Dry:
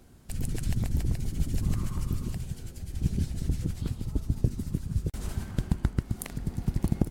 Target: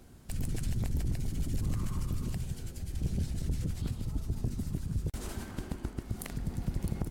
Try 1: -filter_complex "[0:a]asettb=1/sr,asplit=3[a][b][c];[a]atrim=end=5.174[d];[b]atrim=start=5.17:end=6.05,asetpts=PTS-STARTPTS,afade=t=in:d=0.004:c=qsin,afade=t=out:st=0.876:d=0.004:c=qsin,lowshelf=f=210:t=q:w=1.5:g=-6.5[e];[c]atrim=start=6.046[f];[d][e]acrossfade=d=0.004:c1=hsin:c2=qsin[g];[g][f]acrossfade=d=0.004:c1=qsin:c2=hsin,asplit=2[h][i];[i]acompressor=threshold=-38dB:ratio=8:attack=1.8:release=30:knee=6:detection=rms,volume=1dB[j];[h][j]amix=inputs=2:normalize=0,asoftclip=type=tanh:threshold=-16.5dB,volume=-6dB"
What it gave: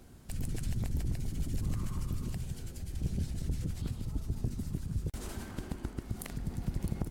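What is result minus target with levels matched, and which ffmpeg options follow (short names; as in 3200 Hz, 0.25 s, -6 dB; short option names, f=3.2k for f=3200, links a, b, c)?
compressor: peak gain reduction +8 dB
-filter_complex "[0:a]asettb=1/sr,asplit=3[a][b][c];[a]atrim=end=5.174[d];[b]atrim=start=5.17:end=6.05,asetpts=PTS-STARTPTS,afade=t=in:d=0.004:c=qsin,afade=t=out:st=0.876:d=0.004:c=qsin,lowshelf=f=210:t=q:w=1.5:g=-6.5[e];[c]atrim=start=6.046[f];[d][e]acrossfade=d=0.004:c1=hsin:c2=qsin[g];[g][f]acrossfade=d=0.004:c1=qsin:c2=hsin,asplit=2[h][i];[i]acompressor=threshold=-29dB:ratio=8:attack=1.8:release=30:knee=6:detection=rms,volume=1dB[j];[h][j]amix=inputs=2:normalize=0,asoftclip=type=tanh:threshold=-16.5dB,volume=-6dB"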